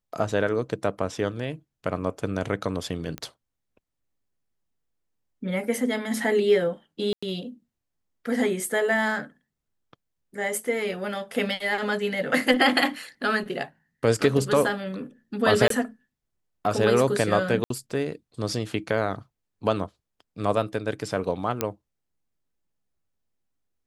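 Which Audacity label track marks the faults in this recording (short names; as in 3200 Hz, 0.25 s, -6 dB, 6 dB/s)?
3.180000	3.180000	pop -18 dBFS
7.130000	7.220000	gap 95 ms
15.680000	15.700000	gap 23 ms
17.640000	17.700000	gap 63 ms
21.610000	21.610000	pop -8 dBFS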